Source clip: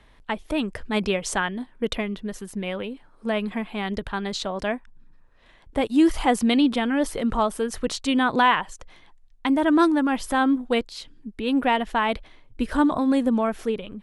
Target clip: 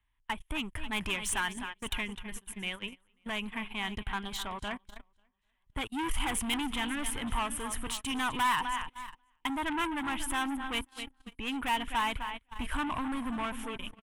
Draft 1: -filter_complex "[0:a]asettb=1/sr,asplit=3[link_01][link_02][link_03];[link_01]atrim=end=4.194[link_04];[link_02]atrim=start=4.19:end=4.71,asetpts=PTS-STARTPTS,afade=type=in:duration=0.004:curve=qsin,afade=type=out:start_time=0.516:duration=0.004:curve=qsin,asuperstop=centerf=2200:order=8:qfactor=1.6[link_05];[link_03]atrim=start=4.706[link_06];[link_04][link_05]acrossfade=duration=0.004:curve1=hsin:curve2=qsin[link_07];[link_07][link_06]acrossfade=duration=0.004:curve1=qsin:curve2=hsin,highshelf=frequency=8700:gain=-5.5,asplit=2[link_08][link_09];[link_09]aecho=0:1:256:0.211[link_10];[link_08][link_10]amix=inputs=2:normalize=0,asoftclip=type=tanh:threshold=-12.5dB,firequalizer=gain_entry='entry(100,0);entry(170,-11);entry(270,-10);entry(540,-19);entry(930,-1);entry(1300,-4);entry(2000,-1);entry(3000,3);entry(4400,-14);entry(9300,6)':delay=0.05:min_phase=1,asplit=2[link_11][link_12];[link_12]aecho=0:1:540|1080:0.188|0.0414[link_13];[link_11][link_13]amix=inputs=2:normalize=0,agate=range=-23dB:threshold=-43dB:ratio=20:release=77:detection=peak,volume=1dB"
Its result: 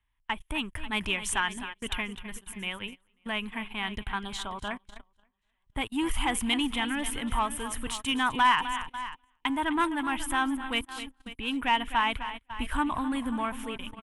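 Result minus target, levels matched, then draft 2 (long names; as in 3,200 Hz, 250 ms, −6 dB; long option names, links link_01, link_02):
soft clipping: distortion −11 dB
-filter_complex "[0:a]asettb=1/sr,asplit=3[link_01][link_02][link_03];[link_01]atrim=end=4.194[link_04];[link_02]atrim=start=4.19:end=4.71,asetpts=PTS-STARTPTS,afade=type=in:duration=0.004:curve=qsin,afade=type=out:start_time=0.516:duration=0.004:curve=qsin,asuperstop=centerf=2200:order=8:qfactor=1.6[link_05];[link_03]atrim=start=4.706[link_06];[link_04][link_05]acrossfade=duration=0.004:curve1=hsin:curve2=qsin[link_07];[link_07][link_06]acrossfade=duration=0.004:curve1=qsin:curve2=hsin,highshelf=frequency=8700:gain=-5.5,asplit=2[link_08][link_09];[link_09]aecho=0:1:256:0.211[link_10];[link_08][link_10]amix=inputs=2:normalize=0,asoftclip=type=tanh:threshold=-23dB,firequalizer=gain_entry='entry(100,0);entry(170,-11);entry(270,-10);entry(540,-19);entry(930,-1);entry(1300,-4);entry(2000,-1);entry(3000,3);entry(4400,-14);entry(9300,6)':delay=0.05:min_phase=1,asplit=2[link_11][link_12];[link_12]aecho=0:1:540|1080:0.188|0.0414[link_13];[link_11][link_13]amix=inputs=2:normalize=0,agate=range=-23dB:threshold=-43dB:ratio=20:release=77:detection=peak,volume=1dB"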